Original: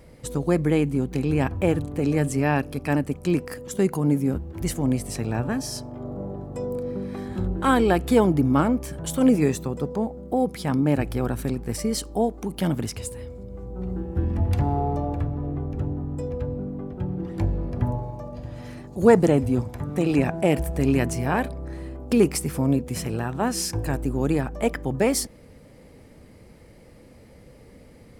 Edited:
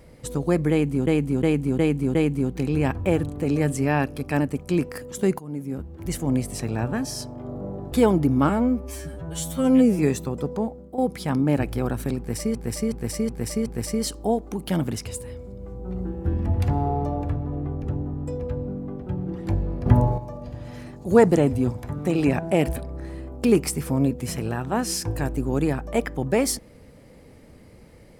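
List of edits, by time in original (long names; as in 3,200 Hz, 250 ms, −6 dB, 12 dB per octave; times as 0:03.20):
0:00.71–0:01.07: repeat, 5 plays
0:03.95–0:04.86: fade in, from −17.5 dB
0:06.48–0:08.06: remove
0:08.63–0:09.38: time-stretch 2×
0:10.00–0:10.37: fade out, to −12 dB
0:11.57–0:11.94: repeat, 5 plays
0:17.77–0:18.09: clip gain +8 dB
0:20.67–0:21.44: remove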